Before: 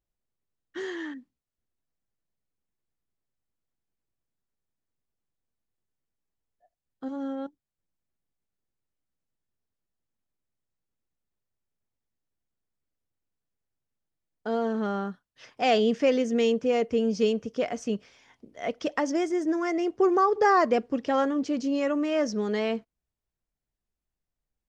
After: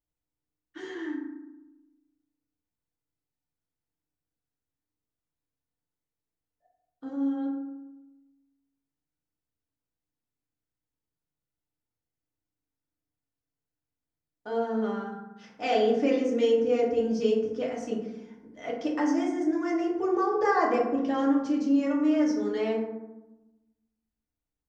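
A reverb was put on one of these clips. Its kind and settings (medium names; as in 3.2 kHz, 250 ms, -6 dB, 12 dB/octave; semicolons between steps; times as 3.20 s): FDN reverb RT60 1 s, low-frequency decay 1.4×, high-frequency decay 0.4×, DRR -4 dB; trim -8.5 dB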